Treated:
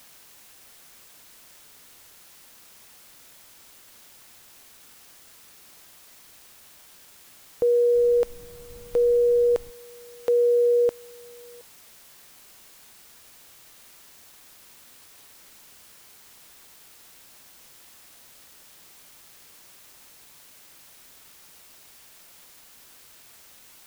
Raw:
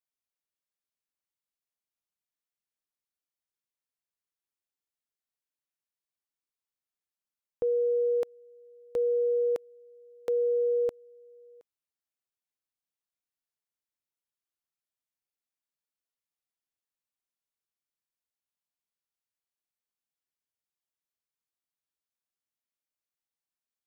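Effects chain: in parallel at -6.5 dB: word length cut 8-bit, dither triangular; 7.94–9.69 s: on the sum: added noise brown -49 dBFS; trim +3.5 dB

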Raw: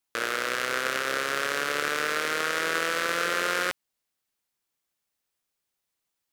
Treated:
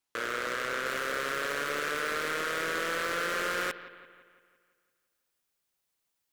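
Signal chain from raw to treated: treble shelf 10 kHz -7 dB, from 0.86 s +2.5 dB; saturation -24 dBFS, distortion -7 dB; bucket-brigade echo 170 ms, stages 4096, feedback 54%, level -15.5 dB

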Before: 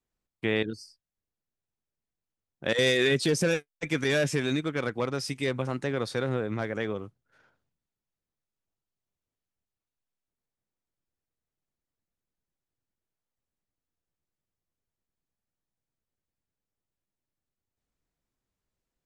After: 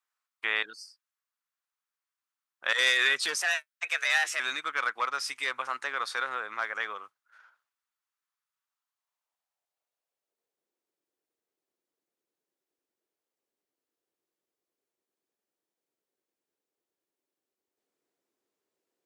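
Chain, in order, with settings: high-pass sweep 1.2 kHz -> 370 Hz, 8.74–10.70 s; 3.41–4.40 s: frequency shift +190 Hz; trim +1 dB

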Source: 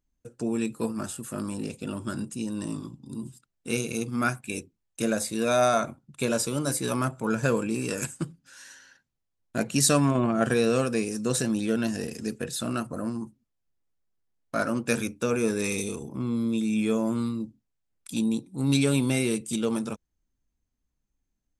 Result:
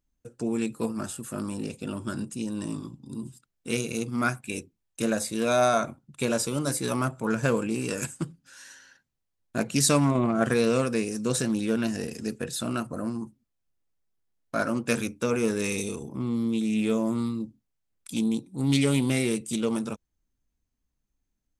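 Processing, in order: loudspeaker Doppler distortion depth 0.13 ms

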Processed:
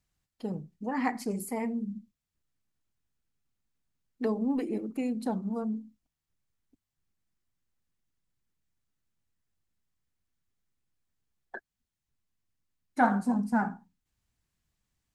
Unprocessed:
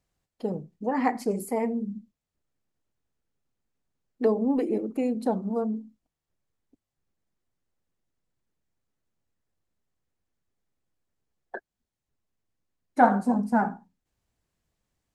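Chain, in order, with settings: peaking EQ 520 Hz -9 dB 1.7 oct

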